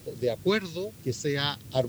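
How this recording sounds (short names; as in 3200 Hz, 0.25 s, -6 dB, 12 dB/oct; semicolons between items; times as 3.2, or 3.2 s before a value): phasing stages 2, 1.2 Hz, lowest notch 590–1400 Hz; a quantiser's noise floor 10-bit, dither triangular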